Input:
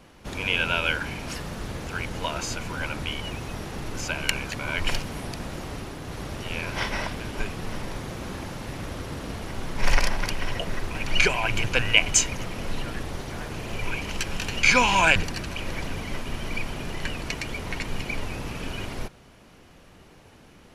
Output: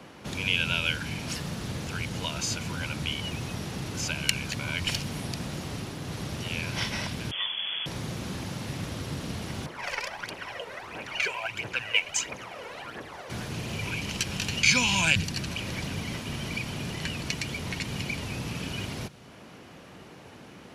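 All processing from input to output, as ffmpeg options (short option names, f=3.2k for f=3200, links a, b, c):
-filter_complex "[0:a]asettb=1/sr,asplit=3[a][b][c];[a]atrim=end=7.314[d];[b]atrim=start=7.31:end=7.86,asetpts=PTS-STARTPTS,afade=t=in:d=0.004:c=qsin,afade=t=out:st=0.546:d=0.004:c=qsin,highpass=40,lowpass=f=3k:t=q:w=0.5098,lowpass=f=3k:t=q:w=0.6013,lowpass=f=3k:t=q:w=0.9,lowpass=f=3k:t=q:w=2.563,afreqshift=-3500[e];[c]atrim=start=7.856[f];[d][e]acrossfade=d=0.004:c1=hsin:c2=qsin[g];[g][f]acrossfade=d=0.004:c1=qsin:c2=hsin,asettb=1/sr,asplit=3[h][i][j];[h]atrim=end=9.664[k];[i]atrim=start=9.66:end=13.3,asetpts=PTS-STARTPTS,afade=t=in:d=0.004:c=qsin,afade=t=out:st=3.636:d=0.004:c=qsin,acrossover=split=390 2200:gain=0.0708 1 0.2[l][m][n];[l][m][n]amix=inputs=3:normalize=0,aphaser=in_gain=1:out_gain=1:delay=2.3:decay=0.58:speed=1.5:type=triangular[o];[j]atrim=start=13.296[p];[k][o]acrossfade=d=0.004:c1=hsin:c2=qsin[q];[q][p]acrossfade=d=0.004:c1=qsin:c2=hsin,highpass=120,highshelf=f=5.3k:g=-6.5,acrossover=split=190|3000[r][s][t];[s]acompressor=threshold=-54dB:ratio=2[u];[r][u][t]amix=inputs=3:normalize=0,volume=6.5dB"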